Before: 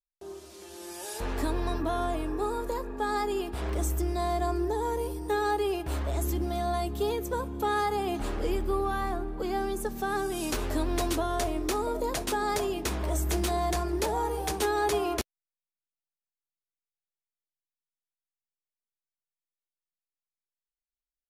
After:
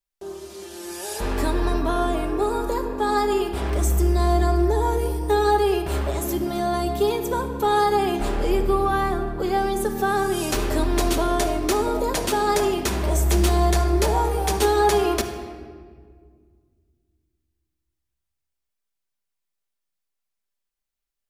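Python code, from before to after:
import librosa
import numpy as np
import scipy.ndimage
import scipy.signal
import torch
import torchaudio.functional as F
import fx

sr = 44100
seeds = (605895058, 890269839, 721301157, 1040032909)

y = fx.room_shoebox(x, sr, seeds[0], volume_m3=2800.0, walls='mixed', distance_m=1.2)
y = F.gain(torch.from_numpy(y), 6.0).numpy()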